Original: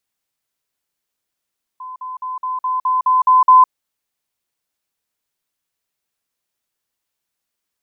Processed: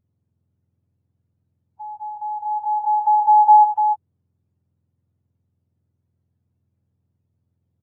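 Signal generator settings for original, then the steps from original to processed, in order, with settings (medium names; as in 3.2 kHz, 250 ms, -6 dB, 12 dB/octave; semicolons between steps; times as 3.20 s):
level ladder 1.02 kHz -28.5 dBFS, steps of 3 dB, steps 9, 0.16 s 0.05 s
spectrum inverted on a logarithmic axis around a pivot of 930 Hz; on a send: delay 296 ms -8.5 dB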